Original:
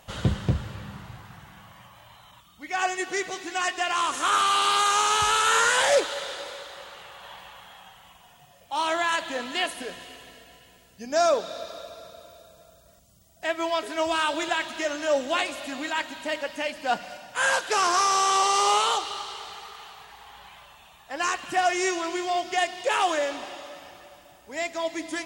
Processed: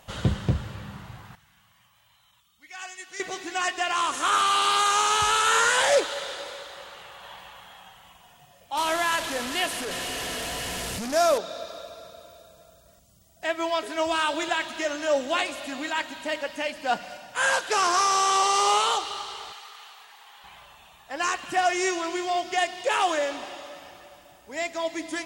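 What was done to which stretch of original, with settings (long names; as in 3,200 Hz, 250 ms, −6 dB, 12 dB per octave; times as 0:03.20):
0:01.35–0:03.20: guitar amp tone stack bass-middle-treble 5-5-5
0:08.77–0:11.38: linear delta modulator 64 kbit/s, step −25.5 dBFS
0:19.52–0:20.44: high-pass filter 1,200 Hz 6 dB per octave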